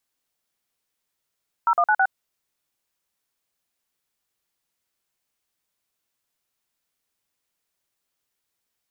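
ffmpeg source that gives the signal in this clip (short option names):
-f lavfi -i "aevalsrc='0.126*clip(min(mod(t,0.108),0.062-mod(t,0.108))/0.002,0,1)*(eq(floor(t/0.108),0)*(sin(2*PI*941*mod(t,0.108))+sin(2*PI*1336*mod(t,0.108)))+eq(floor(t/0.108),1)*(sin(2*PI*697*mod(t,0.108))+sin(2*PI*1209*mod(t,0.108)))+eq(floor(t/0.108),2)*(sin(2*PI*852*mod(t,0.108))+sin(2*PI*1477*mod(t,0.108)))+eq(floor(t/0.108),3)*(sin(2*PI*770*mod(t,0.108))+sin(2*PI*1477*mod(t,0.108))))':d=0.432:s=44100"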